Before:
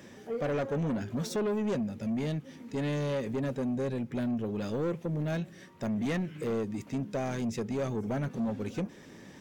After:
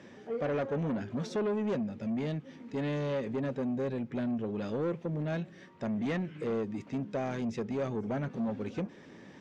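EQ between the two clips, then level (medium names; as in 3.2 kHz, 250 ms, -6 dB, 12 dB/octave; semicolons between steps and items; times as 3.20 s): distance through air 74 m; bass shelf 81 Hz -10.5 dB; treble shelf 6.8 kHz -8 dB; 0.0 dB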